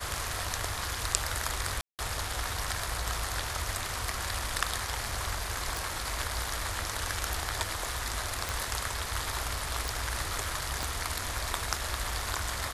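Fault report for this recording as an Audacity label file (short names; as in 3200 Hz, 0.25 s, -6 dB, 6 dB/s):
1.810000	1.990000	gap 0.178 s
5.770000	5.770000	pop
8.490000	8.490000	pop
9.880000	9.880000	pop
10.830000	10.830000	pop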